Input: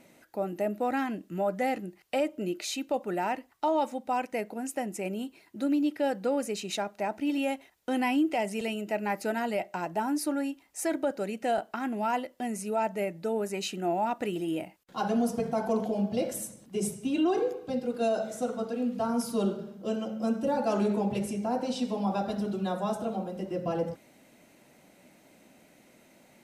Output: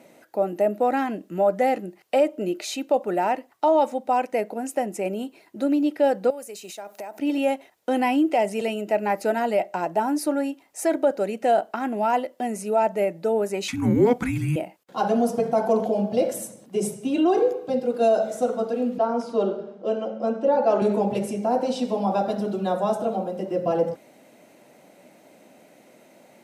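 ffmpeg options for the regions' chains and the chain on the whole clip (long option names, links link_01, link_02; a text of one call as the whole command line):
ffmpeg -i in.wav -filter_complex "[0:a]asettb=1/sr,asplit=3[link_01][link_02][link_03];[link_01]atrim=end=6.304[link_04];[link_02]atrim=start=6.3:end=7.19,asetpts=PTS-STARTPTS,afade=type=in:duration=0.004:curve=qsin,afade=type=out:start_time=0.886:duration=0.004:curve=qsin,aemphasis=mode=production:type=bsi,acompressor=threshold=-39dB:ratio=12:attack=3.2:release=140:knee=1:detection=peak[link_05];[link_03]atrim=start=7.186[link_06];[link_04][link_05]acrossfade=duration=0.004:curve1=hsin:curve2=qsin[link_07];[link_07][link_06]acrossfade=duration=0.004:curve1=qsin:curve2=hsin,asettb=1/sr,asplit=3[link_08][link_09][link_10];[link_08]atrim=end=13.684[link_11];[link_09]atrim=start=13.68:end=14.56,asetpts=PTS-STARTPTS,afade=type=in:duration=0.004:curve=qsin,afade=type=out:start_time=0.876:duration=0.004:curve=qsin,acontrast=39,afreqshift=-470[link_12];[link_10]atrim=start=14.556[link_13];[link_11][link_12]acrossfade=duration=0.004:curve1=hsin:curve2=qsin[link_14];[link_14][link_13]acrossfade=duration=0.004:curve1=qsin:curve2=hsin,asettb=1/sr,asplit=3[link_15][link_16][link_17];[link_15]atrim=end=18.984[link_18];[link_16]atrim=start=18.98:end=20.82,asetpts=PTS-STARTPTS,afade=type=in:duration=0.004:curve=qsin,afade=type=out:start_time=1.836:duration=0.004:curve=qsin,highpass=380,lowpass=7000,aemphasis=mode=reproduction:type=bsi[link_19];[link_17]atrim=start=20.816[link_20];[link_18][link_19]acrossfade=duration=0.004:curve1=hsin:curve2=qsin[link_21];[link_21][link_20]acrossfade=duration=0.004:curve1=qsin:curve2=hsin,highpass=120,equalizer=frequency=580:width_type=o:width=1.5:gain=7,volume=2.5dB" out.wav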